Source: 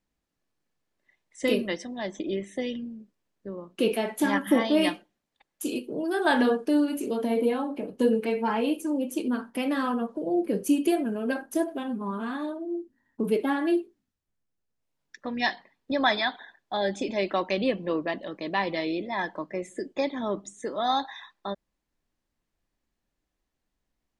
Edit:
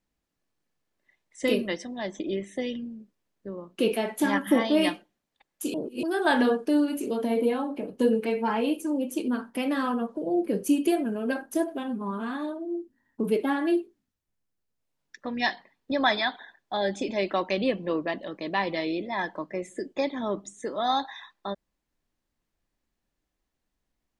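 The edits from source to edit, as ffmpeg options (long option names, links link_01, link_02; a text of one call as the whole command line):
ffmpeg -i in.wav -filter_complex "[0:a]asplit=3[link_01][link_02][link_03];[link_01]atrim=end=5.742[link_04];[link_02]atrim=start=5.738:end=6.032,asetpts=PTS-STARTPTS,areverse[link_05];[link_03]atrim=start=6.028[link_06];[link_04][link_05]acrossfade=duration=0.004:curve1=hsin:curve2=hsin[link_07];[link_07][link_06]acrossfade=duration=0.004:curve1=hsin:curve2=hsin" out.wav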